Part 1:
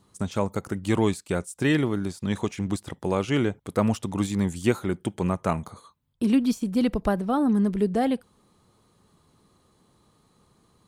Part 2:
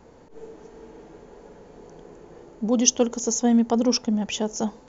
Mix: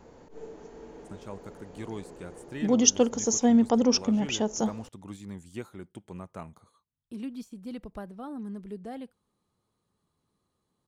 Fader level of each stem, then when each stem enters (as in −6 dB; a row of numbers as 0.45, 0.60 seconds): −16.0, −1.5 decibels; 0.90, 0.00 seconds